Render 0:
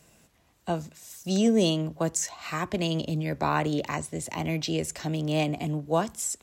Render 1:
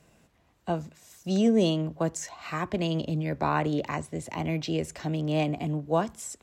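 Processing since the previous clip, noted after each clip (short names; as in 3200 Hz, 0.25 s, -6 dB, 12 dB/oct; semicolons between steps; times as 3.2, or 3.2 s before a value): high shelf 4300 Hz -10.5 dB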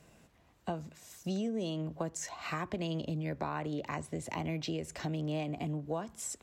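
compressor 6:1, threshold -33 dBFS, peak gain reduction 14 dB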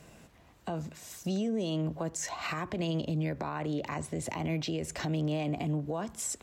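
limiter -31.5 dBFS, peak gain reduction 9.5 dB; gain +6.5 dB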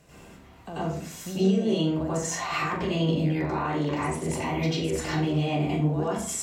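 flutter echo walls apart 7.1 m, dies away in 0.29 s; reverb RT60 0.50 s, pre-delay 86 ms, DRR -10.5 dB; gain -4 dB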